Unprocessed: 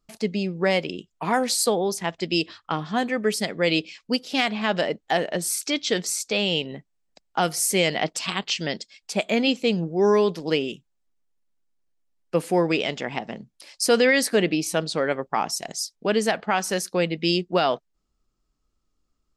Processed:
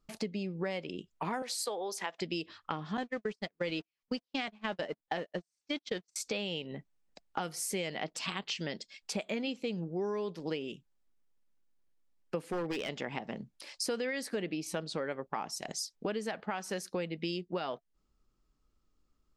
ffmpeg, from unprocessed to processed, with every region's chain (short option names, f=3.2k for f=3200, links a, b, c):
-filter_complex "[0:a]asettb=1/sr,asplit=3[a][b][c];[a]atrim=end=1.424[d];[b]atrim=start=1.42:end=2.21,asetpts=PTS-STARTPTS,afade=t=in:d=0.004:c=qsin,afade=t=out:st=0.786:d=0.004:c=qsin,highpass=520,acompressor=mode=upward:threshold=-28dB:ratio=2.5:attack=3.2:release=140:knee=2.83:detection=peak[e];[c]atrim=start=2.206[f];[d][e]acrossfade=d=0.004:c1=hsin:c2=qsin[g];[g][f]acrossfade=d=0.004:c1=qsin:c2=hsin,asettb=1/sr,asplit=3[h][i][j];[h]atrim=end=2.974[k];[i]atrim=start=2.97:end=6.16,asetpts=PTS-STARTPTS,afade=t=in:d=0.004:c=qsin,afade=t=out:st=3.186:d=0.004:c=qsin,aeval=exprs='val(0)+0.5*0.0224*sgn(val(0))':c=same,lowpass=f=7.5k:w=0.5412,lowpass=f=7.5k:w=1.3066,agate=range=-49dB:threshold=-24dB:ratio=16:release=100:detection=peak[l];[j]atrim=start=6.156[m];[k][l]acrossfade=d=0.004:c1=hsin:c2=qsin[n];[n][m]acrossfade=d=0.004:c1=qsin:c2=hsin,asettb=1/sr,asplit=3[o][p][q];[o]atrim=end=12.444[r];[p]atrim=start=12.44:end=12.89,asetpts=PTS-STARTPTS,afade=t=in:d=0.004:c=qsin,afade=t=out:st=0.446:d=0.004:c=qsin,bandreject=f=930:w=10,aeval=exprs='0.15*(abs(mod(val(0)/0.15+3,4)-2)-1)':c=same[s];[q]atrim=start=12.886[t];[r][s]acrossfade=d=0.004:c1=hsin:c2=qsin[u];[u][t]acrossfade=d=0.004:c1=qsin:c2=hsin,highshelf=f=4.9k:g=-6.5,bandreject=f=690:w=15,acompressor=threshold=-34dB:ratio=5"